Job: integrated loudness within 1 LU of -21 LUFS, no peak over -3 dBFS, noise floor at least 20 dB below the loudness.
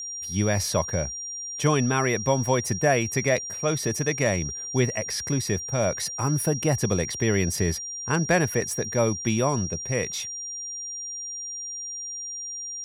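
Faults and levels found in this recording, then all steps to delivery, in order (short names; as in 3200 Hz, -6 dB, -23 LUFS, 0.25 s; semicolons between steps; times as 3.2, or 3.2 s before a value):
dropouts 1; longest dropout 3.1 ms; steady tone 5700 Hz; tone level -32 dBFS; loudness -25.5 LUFS; peak -10.0 dBFS; loudness target -21.0 LUFS
-> interpolate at 8.61, 3.1 ms; notch 5700 Hz, Q 30; gain +4.5 dB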